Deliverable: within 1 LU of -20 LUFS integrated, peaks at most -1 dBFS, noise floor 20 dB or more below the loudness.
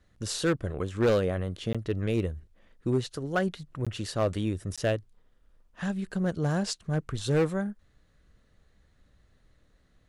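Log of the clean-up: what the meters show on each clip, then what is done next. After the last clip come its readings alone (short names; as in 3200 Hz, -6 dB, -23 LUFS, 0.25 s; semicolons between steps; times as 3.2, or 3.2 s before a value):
clipped 0.6%; flat tops at -18.5 dBFS; dropouts 3; longest dropout 16 ms; loudness -30.0 LUFS; peak -18.5 dBFS; loudness target -20.0 LUFS
-> clip repair -18.5 dBFS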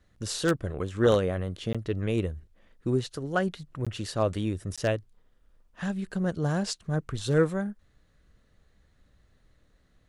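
clipped 0.0%; dropouts 3; longest dropout 16 ms
-> interpolate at 1.73/3.85/4.76, 16 ms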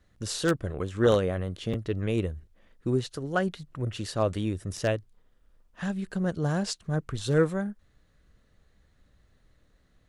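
dropouts 0; loudness -29.5 LUFS; peak -9.5 dBFS; loudness target -20.0 LUFS
-> gain +9.5 dB; limiter -1 dBFS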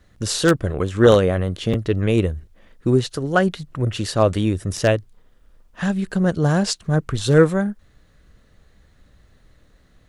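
loudness -20.0 LUFS; peak -1.0 dBFS; noise floor -56 dBFS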